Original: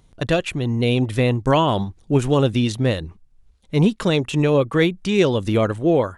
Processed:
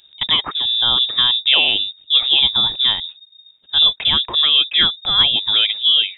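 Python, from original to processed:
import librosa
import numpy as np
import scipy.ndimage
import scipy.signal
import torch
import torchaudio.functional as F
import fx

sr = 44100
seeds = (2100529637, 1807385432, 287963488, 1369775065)

y = fx.freq_invert(x, sr, carrier_hz=3700)
y = F.gain(torch.from_numpy(y), 2.0).numpy()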